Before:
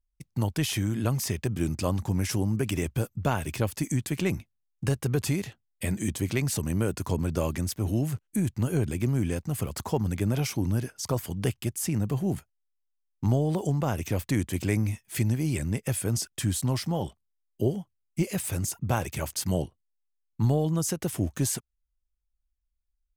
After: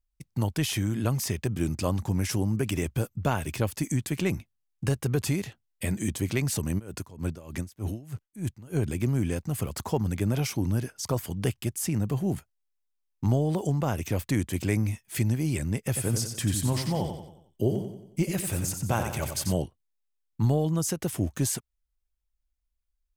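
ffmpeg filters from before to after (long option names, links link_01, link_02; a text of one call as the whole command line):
ffmpeg -i in.wav -filter_complex "[0:a]asplit=3[link_01][link_02][link_03];[link_01]afade=type=out:start_time=6.78:duration=0.02[link_04];[link_02]aeval=exprs='val(0)*pow(10,-21*(0.5-0.5*cos(2*PI*3.3*n/s))/20)':channel_layout=same,afade=type=in:start_time=6.78:duration=0.02,afade=type=out:start_time=8.81:duration=0.02[link_05];[link_03]afade=type=in:start_time=8.81:duration=0.02[link_06];[link_04][link_05][link_06]amix=inputs=3:normalize=0,asettb=1/sr,asplit=3[link_07][link_08][link_09];[link_07]atrim=end=15.774[link_10];[link_08]atrim=start=15.77:end=19.54,asetpts=PTS-STARTPTS,afade=type=in:duration=0.004:curve=qsin,afade=type=out:start_time=3.766:duration=0.004:curve=qsin,aecho=1:1:91|182|273|364|455:0.447|0.205|0.0945|0.0435|0.02,atrim=end_sample=166257[link_11];[link_09]atrim=start=19.536[link_12];[link_10][link_11]acrossfade=duration=0.004:curve1=hsin:curve2=qsin[link_13];[link_13][link_12]acrossfade=duration=0.004:curve1=qsin:curve2=hsin" out.wav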